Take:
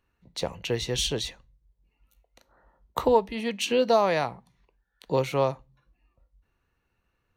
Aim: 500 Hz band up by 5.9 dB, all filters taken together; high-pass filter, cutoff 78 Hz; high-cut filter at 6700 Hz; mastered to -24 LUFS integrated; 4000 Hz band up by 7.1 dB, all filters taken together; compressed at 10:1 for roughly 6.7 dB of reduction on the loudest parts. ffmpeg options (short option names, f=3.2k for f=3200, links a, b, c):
-af "highpass=78,lowpass=6.7k,equalizer=f=500:t=o:g=6.5,equalizer=f=4k:t=o:g=9,acompressor=threshold=-18dB:ratio=10,volume=1dB"